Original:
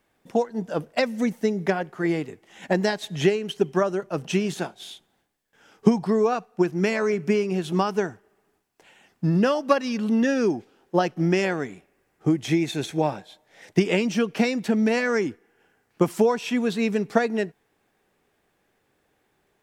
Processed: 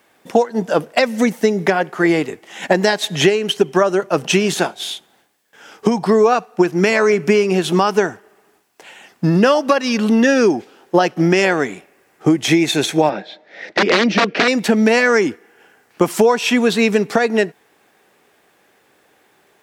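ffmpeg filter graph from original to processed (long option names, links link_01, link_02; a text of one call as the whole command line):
ffmpeg -i in.wav -filter_complex "[0:a]asettb=1/sr,asplit=3[link_01][link_02][link_03];[link_01]atrim=end=13.094[link_04];[link_02]atrim=start=13.09:end=14.48,asetpts=PTS-STARTPTS,afade=type=in:duration=0.004:curve=qsin,afade=type=out:start_time=1.386:duration=0.004:curve=qsin,bandreject=frequency=1100:width=8.4,aeval=exprs='(mod(7.08*val(0)+1,2)-1)/7.08':channel_layout=same,highpass=170,equalizer=frequency=200:width_type=q:width=4:gain=5,equalizer=frequency=330:width_type=q:width=4:gain=4,equalizer=frequency=580:width_type=q:width=4:gain=3,equalizer=frequency=890:width_type=q:width=4:gain=-5,equalizer=frequency=1900:width_type=q:width=4:gain=3,equalizer=frequency=3100:width_type=q:width=4:gain=-5,lowpass=frequency=4500:width=0.5412,lowpass=frequency=4500:width=1.3066[link_05];[link_03]atrim=start=14.476[link_06];[link_04][link_05]acrossfade=duration=0.004:curve1=hsin:curve2=qsin[link_07];[link_07][link_06]acrossfade=duration=0.004:curve1=qsin:curve2=hsin,highpass=frequency=360:poles=1,acompressor=threshold=-26dB:ratio=2,alimiter=level_in=15.5dB:limit=-1dB:release=50:level=0:latency=1,volume=-1dB" out.wav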